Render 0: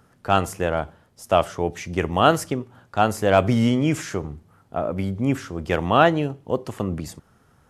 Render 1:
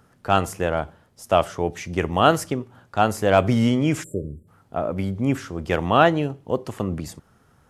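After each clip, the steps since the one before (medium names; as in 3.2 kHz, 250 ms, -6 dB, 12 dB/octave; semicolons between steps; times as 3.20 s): spectral selection erased 4.03–4.48 s, 620–7200 Hz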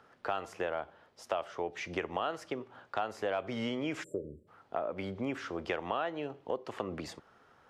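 three-band isolator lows -16 dB, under 330 Hz, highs -19 dB, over 5 kHz; in parallel at -2 dB: peak limiter -11.5 dBFS, peak gain reduction 9.5 dB; on the sum: compression 5:1, threshold -27 dBFS, peak gain reduction 17 dB; trim -5 dB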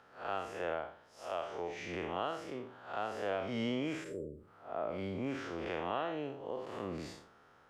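spectral blur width 149 ms; trim +1 dB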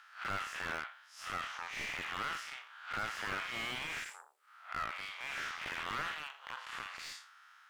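Chebyshev shaper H 3 -23 dB, 7 -29 dB, 8 -22 dB, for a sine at -21 dBFS; inverse Chebyshev high-pass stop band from 220 Hz, stop band 80 dB; slew-rate limiter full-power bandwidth 7.9 Hz; trim +13 dB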